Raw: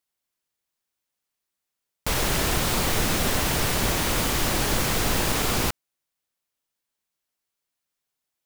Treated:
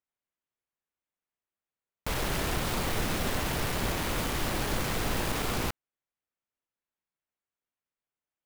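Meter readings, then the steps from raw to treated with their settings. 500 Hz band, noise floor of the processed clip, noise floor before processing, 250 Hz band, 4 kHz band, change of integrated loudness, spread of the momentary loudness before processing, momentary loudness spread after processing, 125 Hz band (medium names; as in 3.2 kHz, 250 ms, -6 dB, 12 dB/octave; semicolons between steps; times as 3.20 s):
-5.5 dB, under -85 dBFS, -84 dBFS, -5.5 dB, -8.5 dB, -7.5 dB, 3 LU, 3 LU, -5.5 dB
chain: local Wiener filter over 9 samples; trim -5.5 dB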